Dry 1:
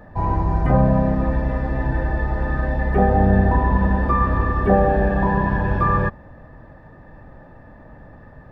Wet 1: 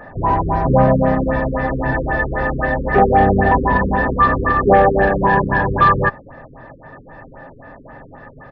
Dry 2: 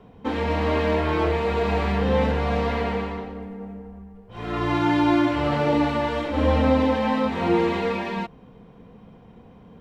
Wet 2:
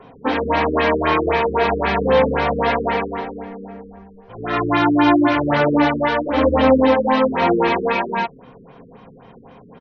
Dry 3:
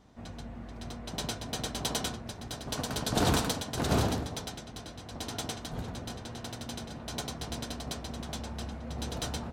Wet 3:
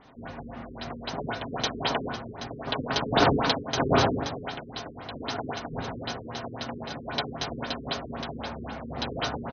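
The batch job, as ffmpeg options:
ffmpeg -i in.wav -filter_complex "[0:a]aecho=1:1:7.4:0.32,asplit=2[link_01][link_02];[link_02]highpass=frequency=720:poles=1,volume=13dB,asoftclip=type=tanh:threshold=-4dB[link_03];[link_01][link_03]amix=inputs=2:normalize=0,lowpass=frequency=4300:poles=1,volume=-6dB,afftfilt=real='re*lt(b*sr/1024,450*pow(6700/450,0.5+0.5*sin(2*PI*3.8*pts/sr)))':imag='im*lt(b*sr/1024,450*pow(6700/450,0.5+0.5*sin(2*PI*3.8*pts/sr)))':win_size=1024:overlap=0.75,volume=3.5dB" out.wav

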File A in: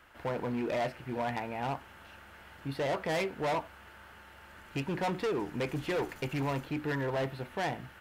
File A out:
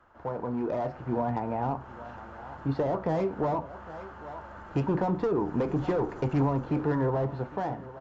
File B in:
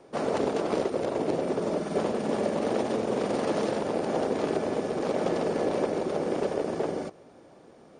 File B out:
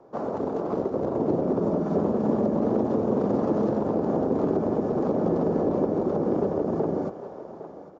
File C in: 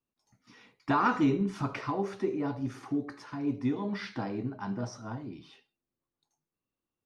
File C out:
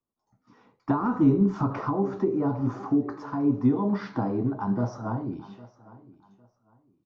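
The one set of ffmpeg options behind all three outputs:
ffmpeg -i in.wav -filter_complex "[0:a]dynaudnorm=framelen=350:gausssize=5:maxgain=8.5dB,flanger=delay=8.4:depth=3.4:regen=-75:speed=0.81:shape=triangular,aresample=16000,aresample=44100,highshelf=frequency=1600:width_type=q:width=1.5:gain=-12,asplit=2[link_01][link_02];[link_02]aecho=0:1:806|1612:0.0944|0.0236[link_03];[link_01][link_03]amix=inputs=2:normalize=0,acrossover=split=340[link_04][link_05];[link_05]acompressor=threshold=-33dB:ratio=6[link_06];[link_04][link_06]amix=inputs=2:normalize=0,volume=4dB" out.wav

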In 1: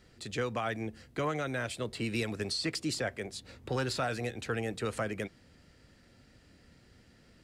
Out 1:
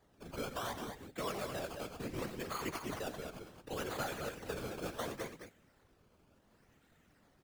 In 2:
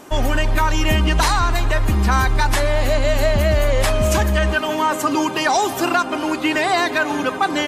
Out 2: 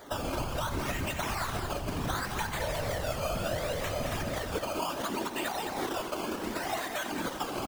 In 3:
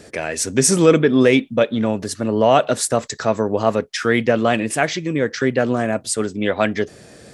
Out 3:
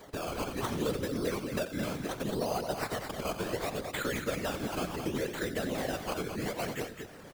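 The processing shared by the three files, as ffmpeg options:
ffmpeg -i in.wav -filter_complex "[0:a]lowshelf=frequency=210:gain=-6.5,bandreject=frequency=260.5:width_type=h:width=4,bandreject=frequency=521:width_type=h:width=4,bandreject=frequency=781.5:width_type=h:width=4,bandreject=frequency=1042:width_type=h:width=4,bandreject=frequency=1302.5:width_type=h:width=4,bandreject=frequency=1563:width_type=h:width=4,bandreject=frequency=1823.5:width_type=h:width=4,bandreject=frequency=2084:width_type=h:width=4,bandreject=frequency=2344.5:width_type=h:width=4,bandreject=frequency=2605:width_type=h:width=4,bandreject=frequency=2865.5:width_type=h:width=4,bandreject=frequency=3126:width_type=h:width=4,bandreject=frequency=3386.5:width_type=h:width=4,bandreject=frequency=3647:width_type=h:width=4,bandreject=frequency=3907.5:width_type=h:width=4,bandreject=frequency=4168:width_type=h:width=4,bandreject=frequency=4428.5:width_type=h:width=4,bandreject=frequency=4689:width_type=h:width=4,bandreject=frequency=4949.5:width_type=h:width=4,bandreject=frequency=5210:width_type=h:width=4,bandreject=frequency=5470.5:width_type=h:width=4,bandreject=frequency=5731:width_type=h:width=4,bandreject=frequency=5991.5:width_type=h:width=4,bandreject=frequency=6252:width_type=h:width=4,bandreject=frequency=6512.5:width_type=h:width=4,bandreject=frequency=6773:width_type=h:width=4,bandreject=frequency=7033.5:width_type=h:width=4,bandreject=frequency=7294:width_type=h:width=4,bandreject=frequency=7554.5:width_type=h:width=4,bandreject=frequency=7815:width_type=h:width=4,bandreject=frequency=8075.5:width_type=h:width=4,bandreject=frequency=8336:width_type=h:width=4,acrossover=split=130[link_01][link_02];[link_01]asoftclip=type=tanh:threshold=-32.5dB[link_03];[link_02]acompressor=threshold=-26dB:ratio=6[link_04];[link_03][link_04]amix=inputs=2:normalize=0,acrusher=samples=16:mix=1:aa=0.000001:lfo=1:lforange=16:lforate=0.69,aecho=1:1:87.46|215.7:0.251|0.447,afftfilt=real='hypot(re,im)*cos(2*PI*random(0))':imag='hypot(re,im)*sin(2*PI*random(1))':win_size=512:overlap=0.75" out.wav

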